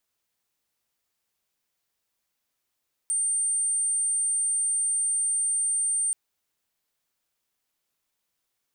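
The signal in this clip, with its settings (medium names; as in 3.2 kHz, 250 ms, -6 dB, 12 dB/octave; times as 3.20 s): tone sine 8.84 kHz -22.5 dBFS 3.03 s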